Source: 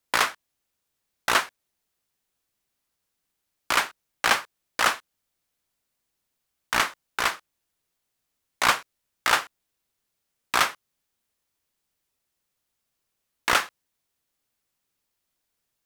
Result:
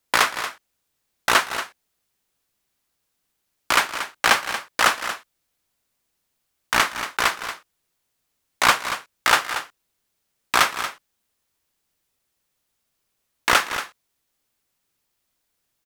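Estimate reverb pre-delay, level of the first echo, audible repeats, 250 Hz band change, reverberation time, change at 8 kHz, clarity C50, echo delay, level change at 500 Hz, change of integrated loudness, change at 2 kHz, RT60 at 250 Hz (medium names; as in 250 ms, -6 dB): no reverb, -17.0 dB, 2, +4.5 dB, no reverb, +4.5 dB, no reverb, 187 ms, +4.5 dB, +3.5 dB, +4.5 dB, no reverb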